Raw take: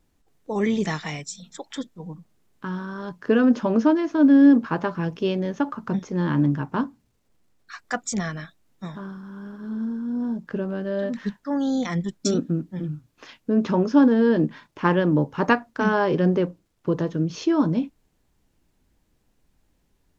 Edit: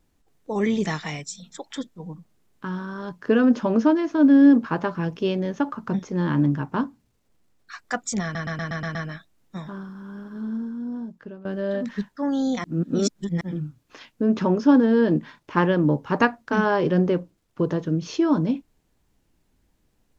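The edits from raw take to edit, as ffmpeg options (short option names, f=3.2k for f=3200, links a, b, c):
-filter_complex "[0:a]asplit=10[a][b][c][d][e][f][g][h][i][j];[a]atrim=end=8.352[k];[b]atrim=start=8.228:end=8.352[l];[c]atrim=start=8.228:end=8.352[m];[d]atrim=start=8.228:end=8.352[n];[e]atrim=start=8.228:end=8.352[o];[f]atrim=start=8.228:end=8.352[p];[g]atrim=start=8.228:end=10.73,asetpts=PTS-STARTPTS,afade=t=out:st=1.472:d=1.03:silence=0.149624[q];[h]atrim=start=10.73:end=11.922,asetpts=PTS-STARTPTS,afade=t=in:d=0.004:c=hsin:silence=0.149624[r];[i]atrim=start=11.918:end=12.692,asetpts=PTS-STARTPTS,areverse[s];[j]atrim=start=12.688[t];[k][l]acrossfade=d=0.004:c1=hsin:c2=hsin[u];[u][m]acrossfade=d=0.004:c1=hsin:c2=hsin[v];[v][n]acrossfade=d=0.004:c1=hsin:c2=hsin[w];[w][o]acrossfade=d=0.004:c1=hsin:c2=hsin[x];[x][p]acrossfade=d=0.004:c1=hsin:c2=hsin[y];[q][r]concat=n=2:v=0:a=1[z];[y][z]acrossfade=d=0.004:c1=hsin:c2=hsin[aa];[aa][s]acrossfade=d=0.004:c1=hsin:c2=hsin[ab];[ab][t]acrossfade=d=0.004:c1=hsin:c2=hsin"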